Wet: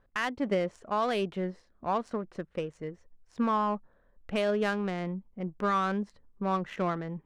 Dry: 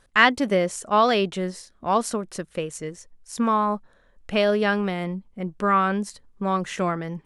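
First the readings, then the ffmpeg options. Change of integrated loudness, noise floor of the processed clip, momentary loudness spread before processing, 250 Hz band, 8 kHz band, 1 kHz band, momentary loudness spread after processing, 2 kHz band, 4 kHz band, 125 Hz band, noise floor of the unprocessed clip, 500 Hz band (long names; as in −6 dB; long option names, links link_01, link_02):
−8.0 dB, −66 dBFS, 13 LU, −6.5 dB, below −15 dB, −8.5 dB, 10 LU, −12.0 dB, −12.0 dB, −6.0 dB, −60 dBFS, −7.0 dB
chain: -af "alimiter=limit=-13.5dB:level=0:latency=1:release=255,adynamicsmooth=sensitivity=2:basefreq=1700,volume=-5dB"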